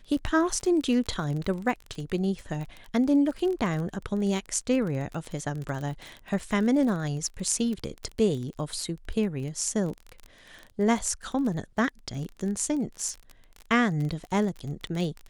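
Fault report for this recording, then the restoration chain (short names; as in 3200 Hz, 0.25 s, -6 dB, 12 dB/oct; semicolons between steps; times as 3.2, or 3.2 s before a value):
crackle 24/s -32 dBFS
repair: de-click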